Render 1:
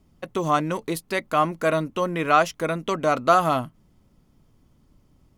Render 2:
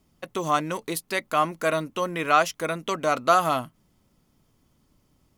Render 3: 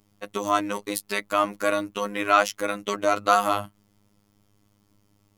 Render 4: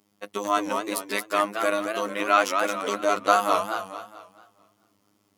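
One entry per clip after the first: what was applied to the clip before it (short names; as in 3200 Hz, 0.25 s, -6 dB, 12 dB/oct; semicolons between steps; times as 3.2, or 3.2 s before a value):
tilt +1.5 dB/oct; gain -1.5 dB
robotiser 102 Hz; gain +3 dB
HPF 200 Hz 12 dB/oct; warbling echo 0.219 s, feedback 40%, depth 183 cents, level -6 dB; gain -1 dB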